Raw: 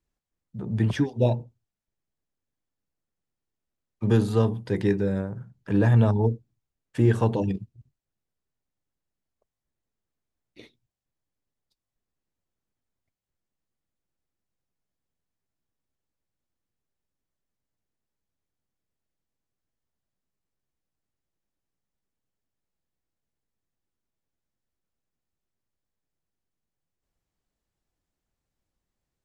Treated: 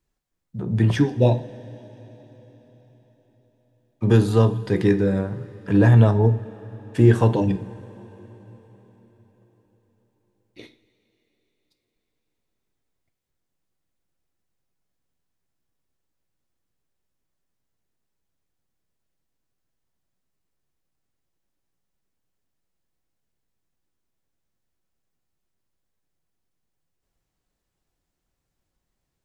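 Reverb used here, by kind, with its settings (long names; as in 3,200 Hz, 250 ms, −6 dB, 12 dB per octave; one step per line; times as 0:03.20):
coupled-rooms reverb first 0.38 s, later 4.7 s, from −18 dB, DRR 8.5 dB
level +4.5 dB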